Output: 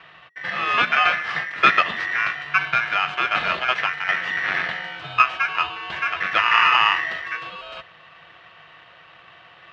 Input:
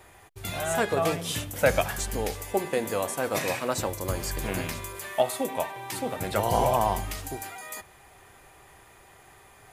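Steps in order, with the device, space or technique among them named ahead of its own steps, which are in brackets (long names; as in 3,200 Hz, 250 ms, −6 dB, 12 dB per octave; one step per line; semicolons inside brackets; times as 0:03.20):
ring modulator pedal into a guitar cabinet (ring modulator with a square carrier 1,900 Hz; loudspeaker in its box 93–3,400 Hz, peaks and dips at 160 Hz +6 dB, 250 Hz −7 dB, 690 Hz +7 dB, 1,200 Hz +6 dB, 1,700 Hz +6 dB, 3,000 Hz +5 dB)
level +3.5 dB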